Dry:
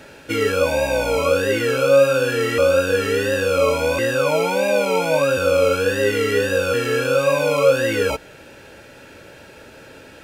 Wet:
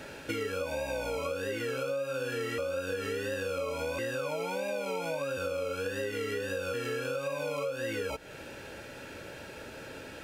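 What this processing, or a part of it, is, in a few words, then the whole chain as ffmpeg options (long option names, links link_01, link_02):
serial compression, leveller first: -af "acompressor=threshold=-20dB:ratio=2,acompressor=threshold=-31dB:ratio=4,volume=-2dB"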